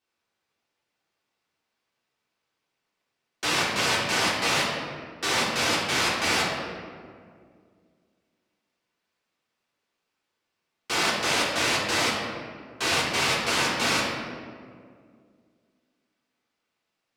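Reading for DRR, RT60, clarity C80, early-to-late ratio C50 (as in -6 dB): -7.5 dB, 2.1 s, 3.0 dB, 1.0 dB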